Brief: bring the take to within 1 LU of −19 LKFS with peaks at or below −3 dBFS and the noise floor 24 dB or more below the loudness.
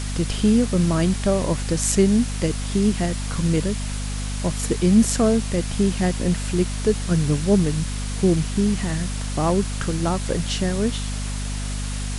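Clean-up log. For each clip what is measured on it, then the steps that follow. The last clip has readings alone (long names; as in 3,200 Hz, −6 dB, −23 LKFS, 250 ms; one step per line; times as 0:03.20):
mains hum 50 Hz; hum harmonics up to 250 Hz; level of the hum −25 dBFS; background noise floor −27 dBFS; target noise floor −46 dBFS; integrated loudness −22.0 LKFS; sample peak −4.5 dBFS; target loudness −19.0 LKFS
→ hum removal 50 Hz, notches 5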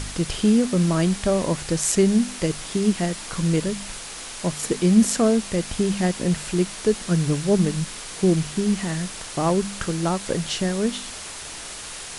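mains hum none found; background noise floor −36 dBFS; target noise floor −47 dBFS
→ noise reduction from a noise print 11 dB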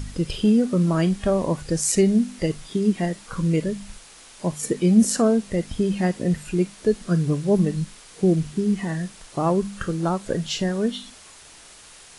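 background noise floor −47 dBFS; integrated loudness −22.5 LKFS; sample peak −5.5 dBFS; target loudness −19.0 LKFS
→ level +3.5 dB
brickwall limiter −3 dBFS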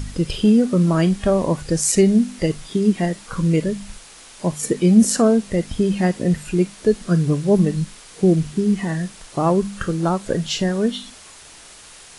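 integrated loudness −19.0 LKFS; sample peak −3.0 dBFS; background noise floor −43 dBFS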